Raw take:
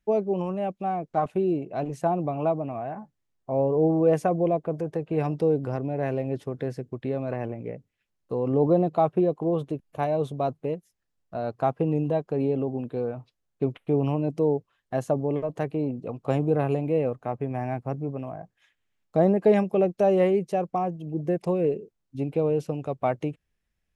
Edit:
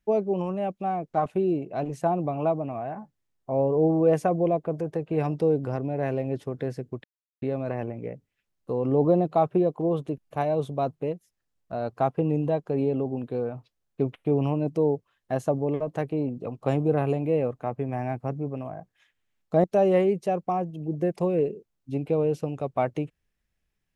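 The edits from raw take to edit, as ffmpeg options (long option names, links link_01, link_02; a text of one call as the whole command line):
ffmpeg -i in.wav -filter_complex "[0:a]asplit=3[link_01][link_02][link_03];[link_01]atrim=end=7.04,asetpts=PTS-STARTPTS,afade=type=out:start_time=7.036:duration=0.004:curve=hsin,apad=pad_dur=0.38[link_04];[link_02]atrim=start=7.04:end=19.262,asetpts=PTS-STARTPTS,afade=type=in:duration=0.004:curve=hsin[link_05];[link_03]atrim=start=19.898[link_06];[link_04][link_05]concat=n=2:v=0:a=1[link_07];[link_07][link_06]acrossfade=duration=0.004:curve1=hsin:curve2=hsin" out.wav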